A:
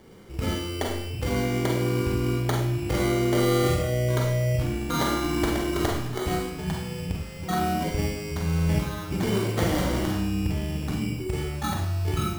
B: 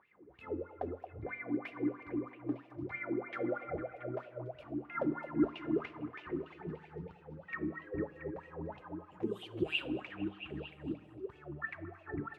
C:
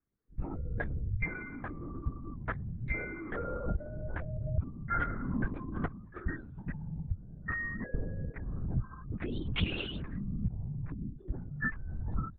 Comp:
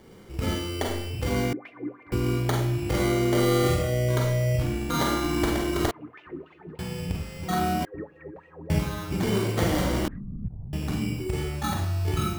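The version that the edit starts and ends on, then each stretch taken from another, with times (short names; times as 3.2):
A
1.53–2.12 from B
5.91–6.79 from B
7.85–8.7 from B
10.08–10.73 from C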